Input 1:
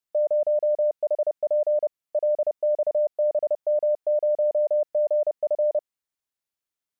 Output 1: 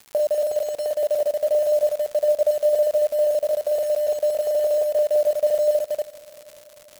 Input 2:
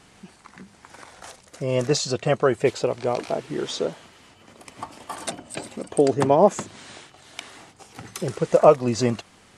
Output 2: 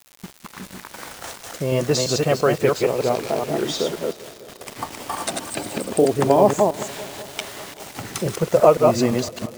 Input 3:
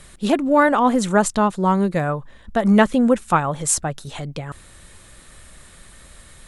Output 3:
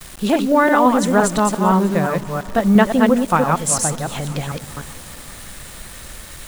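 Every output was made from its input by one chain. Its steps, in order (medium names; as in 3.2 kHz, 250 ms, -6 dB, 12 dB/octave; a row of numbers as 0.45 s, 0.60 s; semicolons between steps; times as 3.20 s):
chunks repeated in reverse 172 ms, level -3 dB; gate with hold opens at -36 dBFS; in parallel at +2 dB: compression 6:1, threshold -31 dBFS; on the sum: crackle 240 per s -32 dBFS; word length cut 6-bit, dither none; on a send: multi-head delay 196 ms, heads first and second, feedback 68%, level -24 dB; on the sum: trim -1 dB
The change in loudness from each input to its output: +3.0 LU, +1.5 LU, +2.0 LU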